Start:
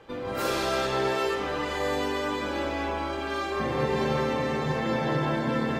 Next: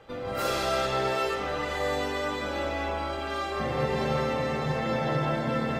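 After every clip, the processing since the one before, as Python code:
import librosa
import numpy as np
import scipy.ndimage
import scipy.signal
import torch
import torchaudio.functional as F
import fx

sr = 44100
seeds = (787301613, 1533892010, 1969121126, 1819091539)

y = x + 0.35 * np.pad(x, (int(1.5 * sr / 1000.0), 0))[:len(x)]
y = y * librosa.db_to_amplitude(-1.0)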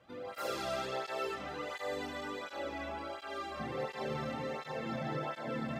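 y = fx.flanger_cancel(x, sr, hz=1.4, depth_ms=2.5)
y = y * librosa.db_to_amplitude(-7.0)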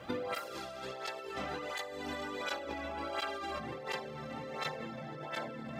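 y = fx.over_compress(x, sr, threshold_db=-48.0, ratio=-1.0)
y = y * librosa.db_to_amplitude(7.0)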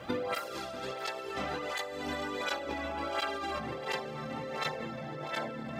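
y = x + 10.0 ** (-14.5 / 20.0) * np.pad(x, (int(642 * sr / 1000.0), 0))[:len(x)]
y = y * librosa.db_to_amplitude(3.5)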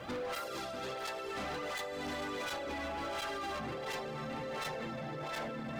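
y = np.clip(x, -10.0 ** (-36.0 / 20.0), 10.0 ** (-36.0 / 20.0))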